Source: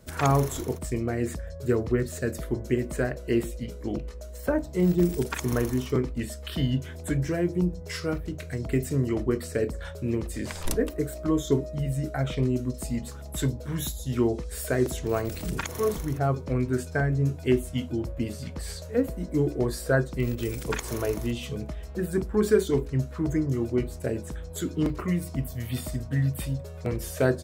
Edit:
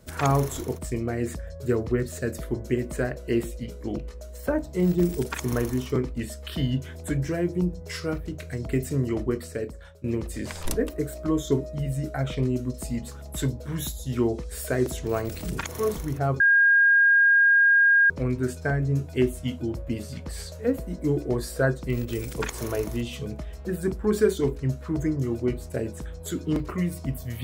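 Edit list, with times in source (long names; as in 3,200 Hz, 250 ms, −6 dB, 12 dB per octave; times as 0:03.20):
0:09.22–0:10.04: fade out, to −16.5 dB
0:16.40: insert tone 1,620 Hz −14.5 dBFS 1.70 s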